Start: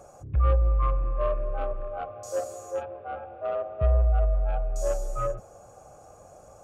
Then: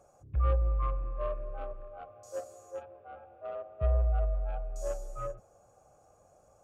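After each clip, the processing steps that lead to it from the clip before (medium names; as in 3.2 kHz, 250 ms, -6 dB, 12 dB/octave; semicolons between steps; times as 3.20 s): upward expansion 1.5:1, over -33 dBFS; trim -5 dB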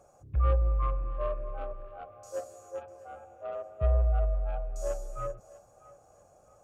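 thinning echo 648 ms, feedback 34%, level -18 dB; trim +2 dB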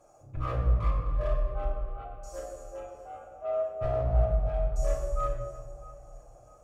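one-sided clip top -29.5 dBFS, bottom -19 dBFS; reverberation RT60 1.4 s, pre-delay 3 ms, DRR -5 dB; trim -4.5 dB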